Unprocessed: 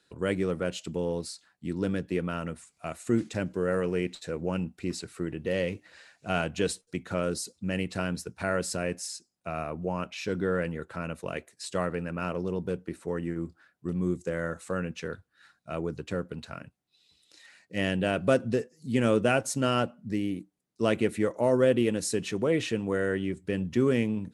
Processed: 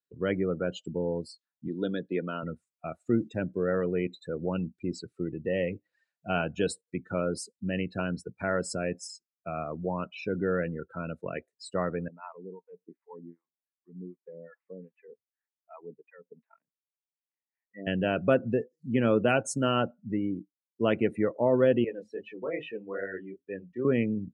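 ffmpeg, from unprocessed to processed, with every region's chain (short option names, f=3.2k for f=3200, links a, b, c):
-filter_complex "[0:a]asettb=1/sr,asplit=3[a][b][c];[a]atrim=end=1.684[d];[b]atrim=start=1.68:end=2.43,asetpts=PTS-STARTPTS,afade=t=in:d=0.004:c=qsin,afade=t=out:st=0.746:d=0.004:c=qsin,highpass=200,lowpass=6.2k,equalizer=f=3.7k:t=o:w=0.45:g=13,bandreject=f=2.7k:w=17[e];[c]atrim=start=2.426[f];[d][e]acrossfade=d=0.004:c1=hsin:c2=qsin[g];[g][f]acrossfade=d=0.004:c1=qsin:c2=hsin,asettb=1/sr,asplit=3[h][i][j];[h]atrim=end=12.084[k];[i]atrim=start=12.08:end=17.87,asetpts=PTS-STARTPTS,afade=t=in:d=0.004:c=qsin,afade=t=out:st=5.786:d=0.004:c=qsin,acrossover=split=660[l][m];[l]aeval=exprs='val(0)*(1-1/2+1/2*cos(2*PI*2.6*n/s))':c=same[n];[m]aeval=exprs='val(0)*(1-1/2-1/2*cos(2*PI*2.6*n/s))':c=same[o];[n][o]amix=inputs=2:normalize=0,highpass=340,equalizer=f=340:t=q:w=4:g=-8,equalizer=f=550:t=q:w=4:g=-9,equalizer=f=910:t=q:w=4:g=5,equalizer=f=1.4k:t=q:w=4:g=-9,equalizer=f=2k:t=q:w=4:g=5,lowpass=f=2.1k:w=0.5412,lowpass=f=2.1k:w=1.3066[p];[j]atrim=start=17.866[q];[k][p]acrossfade=d=0.004:c1=hsin:c2=qsin[r];[r][q]acrossfade=d=0.004:c1=qsin:c2=hsin,asettb=1/sr,asplit=3[s][t][u];[s]atrim=end=21.844[v];[t]atrim=start=21.84:end=23.85,asetpts=PTS-STARTPTS,afade=t=in:d=0.004:c=qsin,afade=t=out:st=2.006:d=0.004:c=qsin,acrossover=split=410 4300:gain=0.251 1 0.2[w][x][y];[w][x][y]amix=inputs=3:normalize=0,bandreject=f=53.16:t=h:w=4,bandreject=f=106.32:t=h:w=4,bandreject=f=159.48:t=h:w=4,bandreject=f=212.64:t=h:w=4,bandreject=f=265.8:t=h:w=4,flanger=delay=19.5:depth=7.4:speed=2.4[z];[u]atrim=start=23.846[aa];[v][z]acrossfade=d=0.004:c1=hsin:c2=qsin[ab];[ab][aa]acrossfade=d=0.004:c1=qsin:c2=hsin,afftdn=nr=31:nf=-36,highpass=91"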